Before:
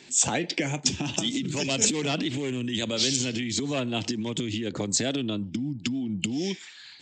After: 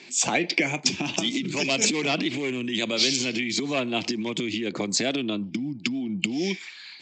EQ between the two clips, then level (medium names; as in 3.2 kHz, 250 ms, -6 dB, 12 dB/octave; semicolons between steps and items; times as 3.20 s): cabinet simulation 170–7300 Hz, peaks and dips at 190 Hz +4 dB, 350 Hz +4 dB, 690 Hz +4 dB, 1.1 kHz +5 dB, 2.3 kHz +10 dB, 4.6 kHz +5 dB; 0.0 dB